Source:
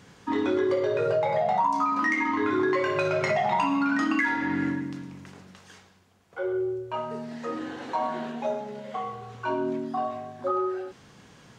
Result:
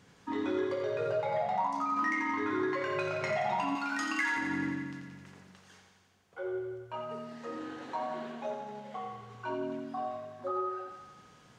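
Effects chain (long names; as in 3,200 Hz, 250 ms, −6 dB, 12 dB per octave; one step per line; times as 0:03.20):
0:03.75–0:04.37: RIAA equalisation recording
feedback echo with a high-pass in the loop 87 ms, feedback 71%, high-pass 340 Hz, level −7 dB
level −8 dB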